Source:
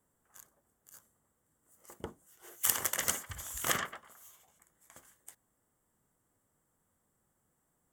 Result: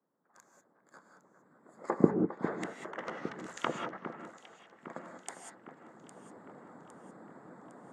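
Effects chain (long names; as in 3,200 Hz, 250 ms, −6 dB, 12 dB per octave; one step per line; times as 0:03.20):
adaptive Wiener filter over 15 samples
camcorder AGC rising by 12 dB per second
treble cut that deepens with the level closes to 360 Hz, closed at −25 dBFS
harmonic and percussive parts rebalanced harmonic −15 dB
high-pass filter 170 Hz 24 dB per octave
high-frequency loss of the air 85 metres
delay that swaps between a low-pass and a high-pass 404 ms, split 2,300 Hz, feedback 72%, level −11 dB
reverb whose tail is shaped and stops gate 220 ms rising, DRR 3.5 dB
level +3 dB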